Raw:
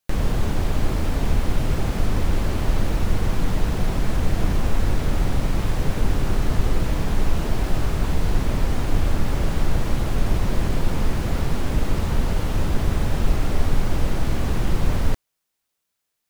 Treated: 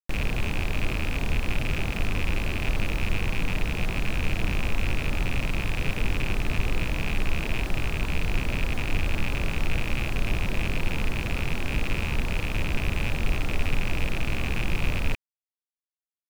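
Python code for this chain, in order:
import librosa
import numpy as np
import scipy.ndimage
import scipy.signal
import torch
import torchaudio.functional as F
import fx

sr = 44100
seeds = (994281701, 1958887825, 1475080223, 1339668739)

y = fx.rattle_buzz(x, sr, strikes_db=-29.0, level_db=-13.0)
y = fx.quant_dither(y, sr, seeds[0], bits=8, dither='none')
y = F.gain(torch.from_numpy(y), -6.0).numpy()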